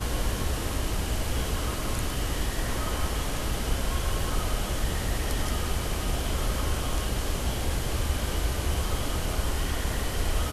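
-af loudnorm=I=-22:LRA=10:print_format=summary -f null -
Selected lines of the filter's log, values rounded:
Input Integrated:    -29.9 LUFS
Input True Peak:     -14.2 dBTP
Input LRA:             0.5 LU
Input Threshold:     -39.9 LUFS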